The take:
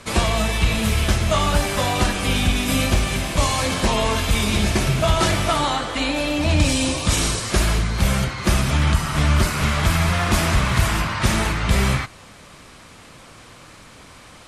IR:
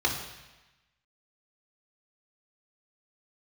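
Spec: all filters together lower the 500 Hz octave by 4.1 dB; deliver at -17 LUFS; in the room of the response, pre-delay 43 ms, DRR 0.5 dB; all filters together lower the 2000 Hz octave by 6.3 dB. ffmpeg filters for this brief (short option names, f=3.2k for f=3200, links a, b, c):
-filter_complex "[0:a]equalizer=f=500:t=o:g=-5,equalizer=f=2k:t=o:g=-8,asplit=2[a][b];[1:a]atrim=start_sample=2205,adelay=43[c];[b][c]afir=irnorm=-1:irlink=0,volume=-12dB[d];[a][d]amix=inputs=2:normalize=0,volume=1dB"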